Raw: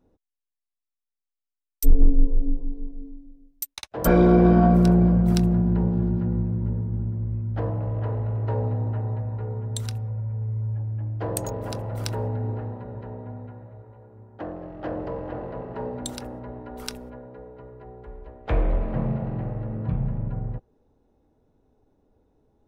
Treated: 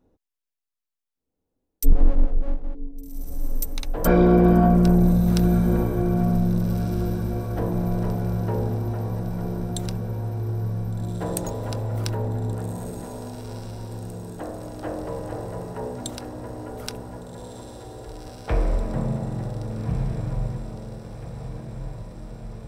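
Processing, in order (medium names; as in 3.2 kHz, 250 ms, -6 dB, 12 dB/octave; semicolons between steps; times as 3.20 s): 1.92–2.75 s: comb filter that takes the minimum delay 1.6 ms; echo that smears into a reverb 1571 ms, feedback 66%, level -9 dB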